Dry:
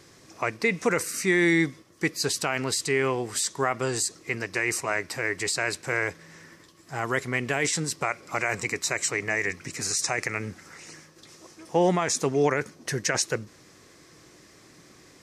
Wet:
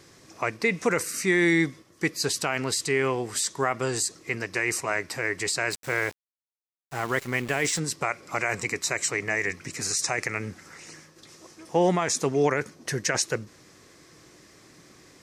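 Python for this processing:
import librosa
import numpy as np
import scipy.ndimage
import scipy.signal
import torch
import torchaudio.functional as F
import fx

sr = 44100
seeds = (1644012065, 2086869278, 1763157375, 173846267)

y = fx.sample_gate(x, sr, floor_db=-36.5, at=(5.71, 7.79))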